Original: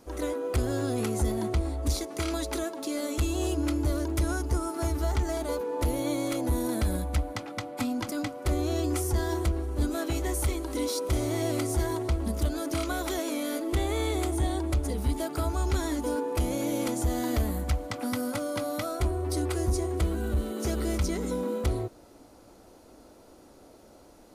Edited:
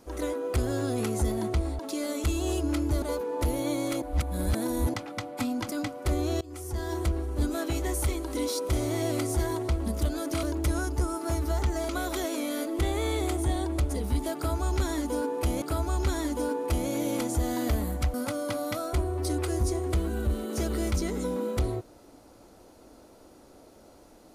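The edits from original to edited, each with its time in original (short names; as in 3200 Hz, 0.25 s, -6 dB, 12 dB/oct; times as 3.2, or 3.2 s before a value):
1.79–2.73 cut
3.96–5.42 move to 12.83
6.42–7.34 reverse
8.81–9.51 fade in, from -23.5 dB
15.29–16.56 loop, 2 plays
17.81–18.21 cut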